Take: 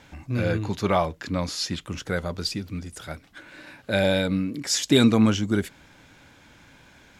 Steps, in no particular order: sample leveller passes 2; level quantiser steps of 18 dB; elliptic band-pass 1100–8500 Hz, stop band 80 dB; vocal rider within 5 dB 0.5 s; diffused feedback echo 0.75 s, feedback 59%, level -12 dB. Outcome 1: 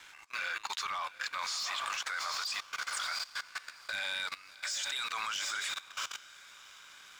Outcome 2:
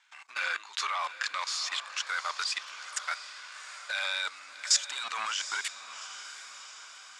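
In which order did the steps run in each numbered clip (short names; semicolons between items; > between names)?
elliptic band-pass > vocal rider > diffused feedback echo > sample leveller > level quantiser; sample leveller > elliptic band-pass > level quantiser > vocal rider > diffused feedback echo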